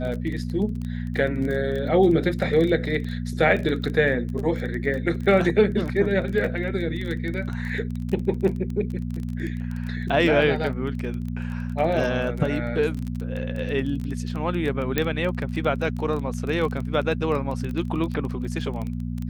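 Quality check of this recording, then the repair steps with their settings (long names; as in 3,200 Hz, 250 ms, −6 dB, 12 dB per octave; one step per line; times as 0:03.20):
surface crackle 20 per second −28 dBFS
mains hum 60 Hz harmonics 4 −29 dBFS
0:14.98: click −7 dBFS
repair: click removal
hum removal 60 Hz, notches 4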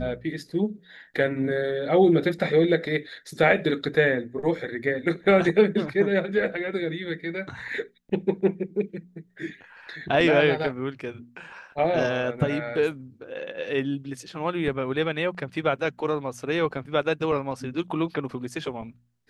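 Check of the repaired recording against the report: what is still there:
none of them is left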